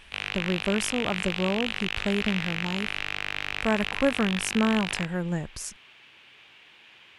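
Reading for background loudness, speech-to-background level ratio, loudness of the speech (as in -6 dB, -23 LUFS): -30.5 LUFS, 1.5 dB, -29.0 LUFS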